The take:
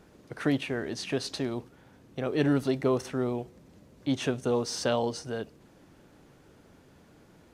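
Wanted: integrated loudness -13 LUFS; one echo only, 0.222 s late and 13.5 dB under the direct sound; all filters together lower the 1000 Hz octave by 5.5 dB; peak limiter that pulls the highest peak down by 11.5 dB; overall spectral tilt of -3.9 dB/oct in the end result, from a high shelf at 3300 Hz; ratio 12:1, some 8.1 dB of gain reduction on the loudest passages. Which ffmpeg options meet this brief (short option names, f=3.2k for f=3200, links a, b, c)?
-af "equalizer=f=1k:t=o:g=-8.5,highshelf=f=3.3k:g=6.5,acompressor=threshold=-29dB:ratio=12,alimiter=level_in=6.5dB:limit=-24dB:level=0:latency=1,volume=-6.5dB,aecho=1:1:222:0.211,volume=27.5dB"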